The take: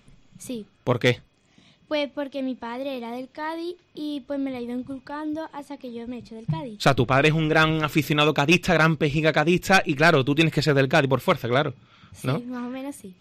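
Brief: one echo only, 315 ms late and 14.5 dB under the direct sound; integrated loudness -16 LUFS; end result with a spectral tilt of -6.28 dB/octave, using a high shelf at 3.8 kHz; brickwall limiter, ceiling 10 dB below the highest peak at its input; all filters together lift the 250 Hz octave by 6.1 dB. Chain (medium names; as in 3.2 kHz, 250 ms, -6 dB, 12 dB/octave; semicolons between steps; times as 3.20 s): peaking EQ 250 Hz +8.5 dB; treble shelf 3.8 kHz -8.5 dB; peak limiter -14 dBFS; delay 315 ms -14.5 dB; trim +9 dB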